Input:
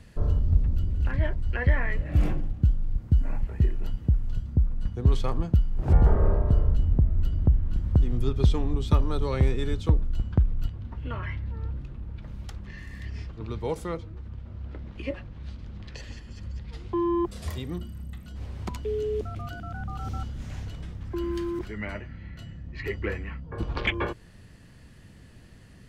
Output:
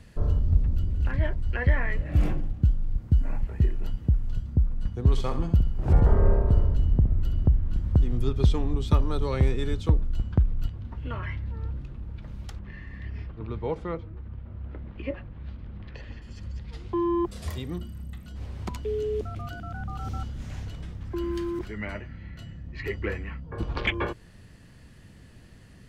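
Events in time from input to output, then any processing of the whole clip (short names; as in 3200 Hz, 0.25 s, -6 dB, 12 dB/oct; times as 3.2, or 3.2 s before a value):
5.11–7.51 feedback echo 66 ms, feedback 39%, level -9 dB
12.59–16.22 LPF 2600 Hz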